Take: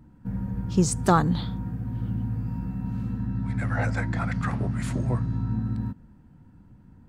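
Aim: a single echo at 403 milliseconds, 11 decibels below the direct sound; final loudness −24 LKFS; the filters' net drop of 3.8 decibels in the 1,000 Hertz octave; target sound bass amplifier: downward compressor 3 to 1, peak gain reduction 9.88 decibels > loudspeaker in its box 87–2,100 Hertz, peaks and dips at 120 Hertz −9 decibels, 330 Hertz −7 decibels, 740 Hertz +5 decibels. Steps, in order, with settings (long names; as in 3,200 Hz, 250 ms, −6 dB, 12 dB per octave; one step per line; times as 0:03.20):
parametric band 1,000 Hz −8 dB
single-tap delay 403 ms −11 dB
downward compressor 3 to 1, threshold −28 dBFS
loudspeaker in its box 87–2,100 Hz, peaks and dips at 120 Hz −9 dB, 330 Hz −7 dB, 740 Hz +5 dB
level +12 dB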